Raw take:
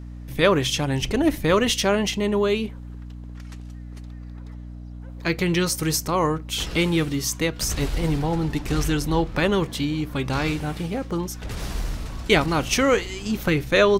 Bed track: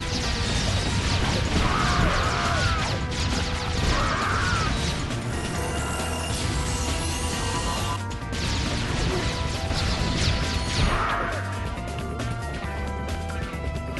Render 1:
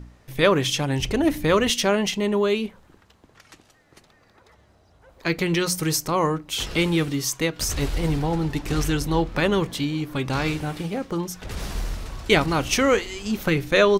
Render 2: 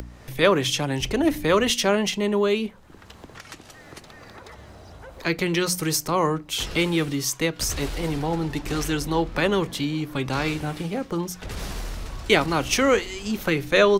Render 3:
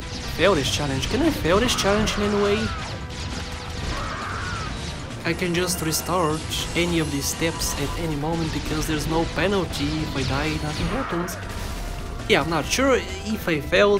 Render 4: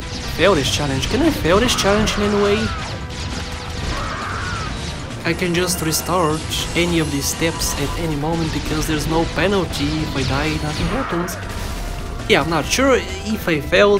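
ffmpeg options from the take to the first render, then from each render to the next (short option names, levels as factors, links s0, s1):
-af "bandreject=f=60:t=h:w=4,bandreject=f=120:t=h:w=4,bandreject=f=180:t=h:w=4,bandreject=f=240:t=h:w=4,bandreject=f=300:t=h:w=4"
-filter_complex "[0:a]acrossover=split=230|470|6600[s0][s1][s2][s3];[s0]alimiter=level_in=1.33:limit=0.0631:level=0:latency=1,volume=0.75[s4];[s4][s1][s2][s3]amix=inputs=4:normalize=0,acompressor=mode=upward:threshold=0.0282:ratio=2.5"
-filter_complex "[1:a]volume=0.562[s0];[0:a][s0]amix=inputs=2:normalize=0"
-af "volume=1.68,alimiter=limit=0.891:level=0:latency=1"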